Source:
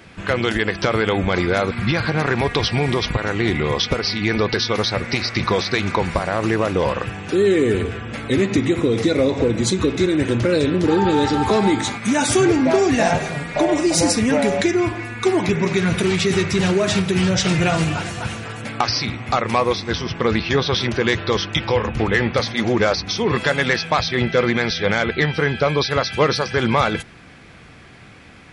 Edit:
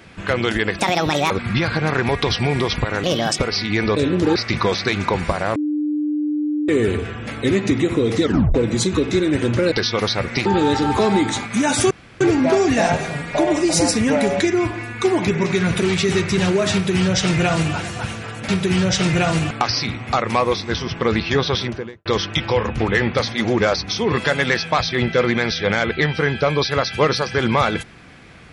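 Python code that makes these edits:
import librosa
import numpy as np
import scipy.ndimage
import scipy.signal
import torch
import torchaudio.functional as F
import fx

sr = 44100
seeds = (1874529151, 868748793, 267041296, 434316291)

y = fx.studio_fade_out(x, sr, start_s=20.68, length_s=0.57)
y = fx.edit(y, sr, fx.speed_span(start_s=0.79, length_s=0.84, speed=1.63),
    fx.speed_span(start_s=3.36, length_s=0.54, speed=1.54),
    fx.swap(start_s=4.48, length_s=0.74, other_s=10.58, other_length_s=0.39),
    fx.bleep(start_s=6.42, length_s=1.13, hz=299.0, db=-18.0),
    fx.tape_stop(start_s=9.09, length_s=0.32),
    fx.insert_room_tone(at_s=12.42, length_s=0.3),
    fx.duplicate(start_s=16.94, length_s=1.02, to_s=18.7), tone=tone)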